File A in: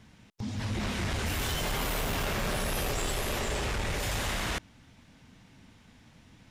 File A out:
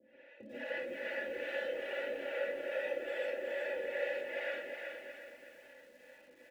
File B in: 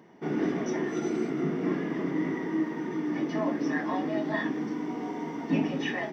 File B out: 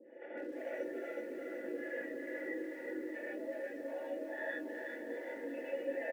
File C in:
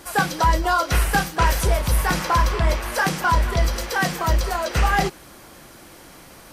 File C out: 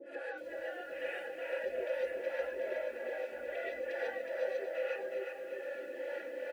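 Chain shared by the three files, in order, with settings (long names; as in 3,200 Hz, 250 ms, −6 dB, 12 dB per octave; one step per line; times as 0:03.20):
mains-hum notches 50/100 Hz
reverb reduction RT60 1.4 s
three-way crossover with the lows and the highs turned down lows −20 dB, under 240 Hz, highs −18 dB, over 2,500 Hz
comb filter 3.5 ms, depth 79%
dynamic equaliser 1,900 Hz, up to −4 dB, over −41 dBFS, Q 5.7
downward compressor 12 to 1, threshold −38 dBFS
brickwall limiter −37 dBFS
formant filter e
two-band tremolo in antiphase 2.4 Hz, depth 100%, crossover 470 Hz
repeating echo 612 ms, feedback 31%, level −12 dB
reverb whose tail is shaped and stops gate 170 ms rising, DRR −6 dB
feedback echo at a low word length 368 ms, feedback 35%, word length 13 bits, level −4.5 dB
level +14 dB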